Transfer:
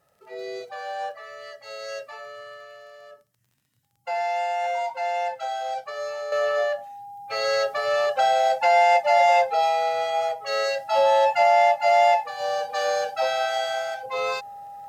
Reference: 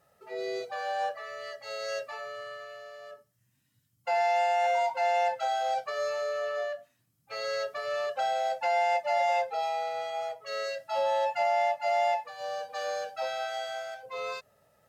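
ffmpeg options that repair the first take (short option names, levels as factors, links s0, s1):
-af "adeclick=t=4,bandreject=f=810:w=30,asetnsamples=n=441:p=0,asendcmd='6.32 volume volume -9dB',volume=1"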